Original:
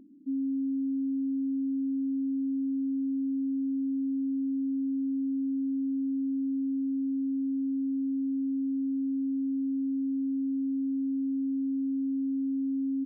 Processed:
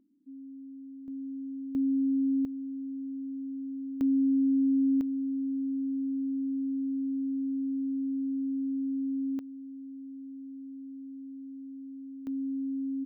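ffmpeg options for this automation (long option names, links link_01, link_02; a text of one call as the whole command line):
ffmpeg -i in.wav -af "asetnsamples=nb_out_samples=441:pad=0,asendcmd='1.08 volume volume -8dB;1.75 volume volume 3dB;2.45 volume volume -7dB;4.01 volume volume 5dB;5.01 volume volume -1.5dB;9.39 volume volume -13dB;12.27 volume volume -3dB',volume=-15dB" out.wav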